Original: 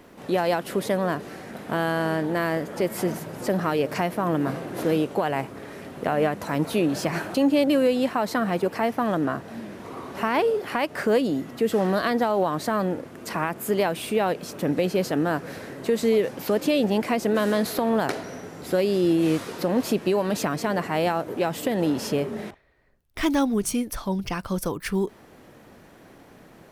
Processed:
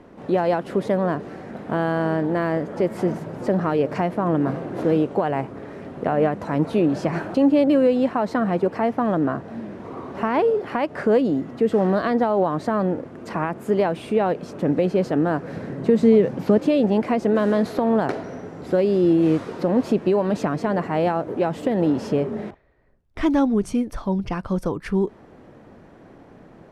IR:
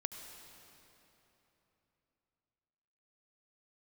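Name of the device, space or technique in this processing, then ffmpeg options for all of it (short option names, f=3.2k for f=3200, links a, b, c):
through cloth: -filter_complex "[0:a]asettb=1/sr,asplit=3[a][b][c];[a]atrim=end=15.534[d];[b]atrim=start=15.53:end=16.58,asetpts=PTS-STARTPTS,afade=t=in:d=0.004:c=qsin,afade=t=out:st=1.046:d=0.004:c=qsin,equalizer=f=160:w=1.1:g=9[e];[c]atrim=start=16.576[f];[d][e]acrossfade=d=0.004:c1=hsin:c2=qsin[g];[g][f]acrossfade=d=0.004:c1=qsin:c2=hsin,lowpass=8.4k,highshelf=f=2k:g=-14,volume=4dB"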